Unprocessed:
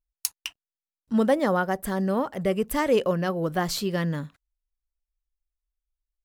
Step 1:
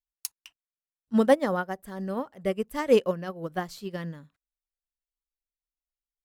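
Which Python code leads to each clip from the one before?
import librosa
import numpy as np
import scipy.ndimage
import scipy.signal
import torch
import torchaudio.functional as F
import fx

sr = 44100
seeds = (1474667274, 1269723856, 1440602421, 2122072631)

y = fx.upward_expand(x, sr, threshold_db=-30.0, expansion=2.5)
y = F.gain(torch.from_numpy(y), 3.5).numpy()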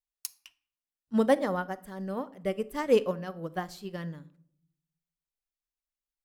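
y = fx.room_shoebox(x, sr, seeds[0], volume_m3=1000.0, walls='furnished', distance_m=0.47)
y = F.gain(torch.from_numpy(y), -3.0).numpy()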